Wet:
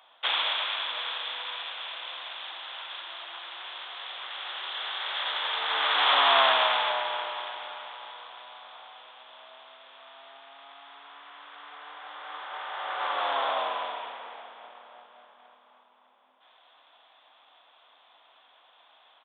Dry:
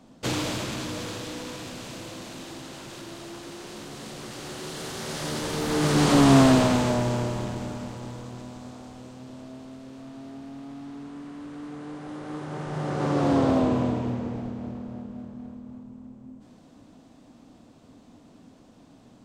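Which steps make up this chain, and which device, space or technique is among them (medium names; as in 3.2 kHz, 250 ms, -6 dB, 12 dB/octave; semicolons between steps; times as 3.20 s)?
musical greeting card (resampled via 8 kHz; high-pass 830 Hz 24 dB/octave; peaking EQ 3.4 kHz +9 dB 0.22 oct); trim +5 dB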